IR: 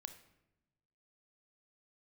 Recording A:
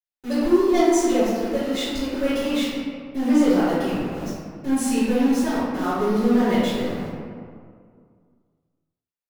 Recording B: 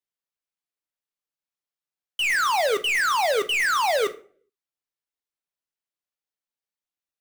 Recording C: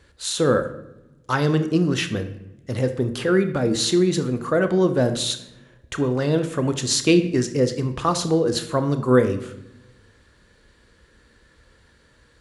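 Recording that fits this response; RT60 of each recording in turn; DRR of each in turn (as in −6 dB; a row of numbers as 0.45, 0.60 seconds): C; 2.1, 0.45, 0.95 seconds; −15.0, 8.5, 8.5 decibels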